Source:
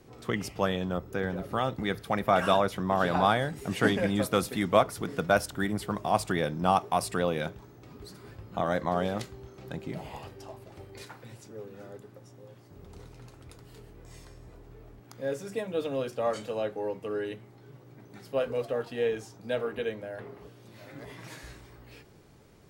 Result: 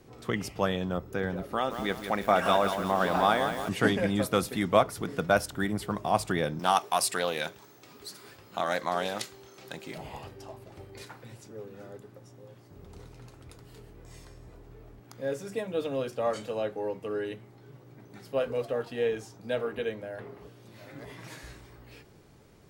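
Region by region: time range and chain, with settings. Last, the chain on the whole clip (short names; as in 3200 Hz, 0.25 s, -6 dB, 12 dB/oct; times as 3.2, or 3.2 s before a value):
1.44–3.69 bell 120 Hz -15 dB 0.58 oct + lo-fi delay 0.173 s, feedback 55%, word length 7-bit, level -7.5 dB
6.59–9.98 HPF 430 Hz 6 dB/oct + high shelf 2400 Hz +10 dB + Doppler distortion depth 0.1 ms
whole clip: dry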